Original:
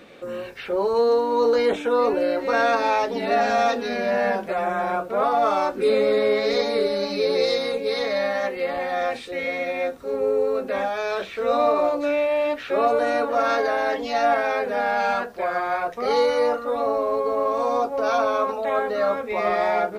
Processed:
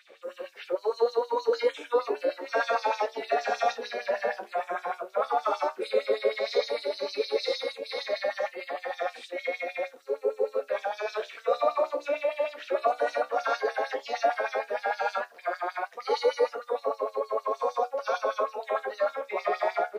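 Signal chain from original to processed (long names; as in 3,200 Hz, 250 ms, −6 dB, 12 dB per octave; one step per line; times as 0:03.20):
auto-filter high-pass sine 6.5 Hz 390–5,600 Hz
flanger 0.12 Hz, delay 9.5 ms, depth 6.5 ms, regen −57%
level −4 dB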